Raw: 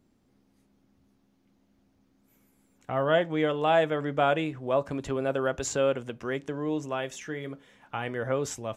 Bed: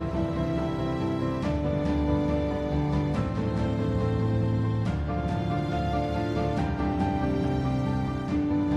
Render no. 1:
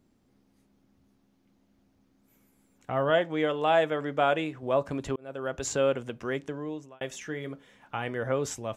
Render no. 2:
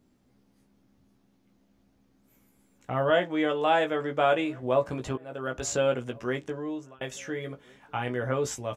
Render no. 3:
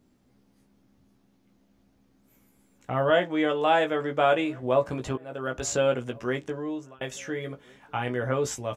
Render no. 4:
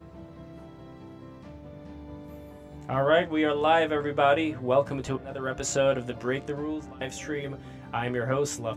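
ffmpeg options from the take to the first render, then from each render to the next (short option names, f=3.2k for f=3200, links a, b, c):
-filter_complex "[0:a]asettb=1/sr,asplit=3[a][b][c];[a]atrim=end=3.104[d];[b]atrim=start=3.1:end=4.63,asetpts=PTS-STARTPTS,afade=t=in:d=0.004:c=qsin,afade=t=out:st=1.526:d=0.004:c=qsin,lowshelf=f=130:g=-10.5[e];[c]atrim=start=4.626[f];[d][e]acrossfade=d=0.004:c1=hsin:c2=qsin[g];[g][f]acrossfade=d=0.004:c1=qsin:c2=hsin,asplit=3[h][i][j];[h]atrim=end=5.16,asetpts=PTS-STARTPTS,afade=t=out:st=5.156:d=0.004:c=hsin[k];[i]atrim=start=5.16:end=7.01,asetpts=PTS-STARTPTS,afade=t=in:d=0.55,afade=t=out:st=1.23:d=0.62[l];[j]atrim=start=7.01,asetpts=PTS-STARTPTS,afade=t=in:d=0.004:c=hsin[m];[k][l][m]concat=n=3:v=0:a=1"
-filter_complex "[0:a]asplit=2[a][b];[b]adelay=16,volume=-5dB[c];[a][c]amix=inputs=2:normalize=0,asplit=2[d][e];[e]adelay=1399,volume=-27dB,highshelf=f=4k:g=-31.5[f];[d][f]amix=inputs=2:normalize=0"
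-af "volume=1.5dB"
-filter_complex "[1:a]volume=-17.5dB[a];[0:a][a]amix=inputs=2:normalize=0"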